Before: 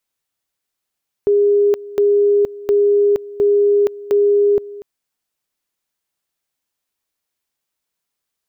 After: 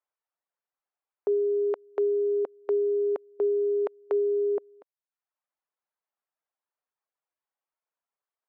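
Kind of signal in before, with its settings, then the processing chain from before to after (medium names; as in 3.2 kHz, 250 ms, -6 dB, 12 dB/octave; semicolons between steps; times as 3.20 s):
two-level tone 408 Hz -10 dBFS, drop 19 dB, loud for 0.47 s, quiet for 0.24 s, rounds 5
low-pass 1.1 kHz 12 dB/octave; reverb removal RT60 0.64 s; high-pass 700 Hz 12 dB/octave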